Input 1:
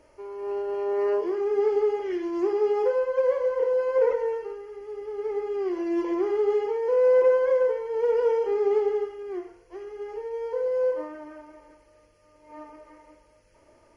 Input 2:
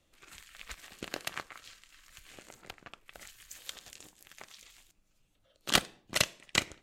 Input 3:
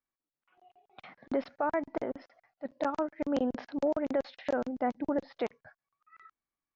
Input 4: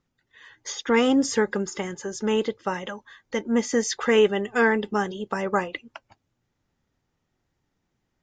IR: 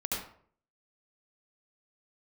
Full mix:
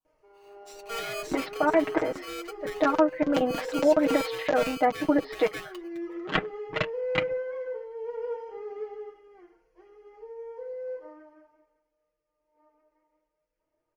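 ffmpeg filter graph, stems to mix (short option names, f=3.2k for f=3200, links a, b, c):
-filter_complex "[0:a]highshelf=f=5.1k:g=-10,bandreject=f=50:t=h:w=6,bandreject=f=100:t=h:w=6,bandreject=f=150:t=h:w=6,bandreject=f=200:t=h:w=6,bandreject=f=250:t=h:w=6,bandreject=f=300:t=h:w=6,adelay=50,volume=-9.5dB,afade=t=out:st=11.05:d=0.73:silence=0.266073[a];[1:a]lowpass=1.6k,acontrast=74,afwtdn=0.00891,adelay=600,volume=-1.5dB[b];[2:a]dynaudnorm=f=210:g=11:m=8dB,volume=1dB[c];[3:a]aeval=exprs='val(0)*sgn(sin(2*PI*920*n/s))':c=same,volume=-15.5dB[d];[a][b][c][d]amix=inputs=4:normalize=0,aecho=1:1:6.4:0.84,flanger=delay=1.3:depth=4.2:regen=-68:speed=0.42:shape=sinusoidal,adynamicequalizer=threshold=0.00562:dfrequency=2400:dqfactor=0.86:tfrequency=2400:tqfactor=0.86:attack=5:release=100:ratio=0.375:range=2.5:mode=boostabove:tftype=bell"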